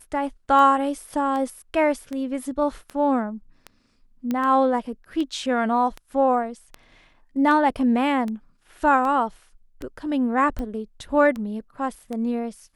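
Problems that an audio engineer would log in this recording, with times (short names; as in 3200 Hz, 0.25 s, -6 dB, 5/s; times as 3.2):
tick 78 rpm -19 dBFS
4.31 pop -14 dBFS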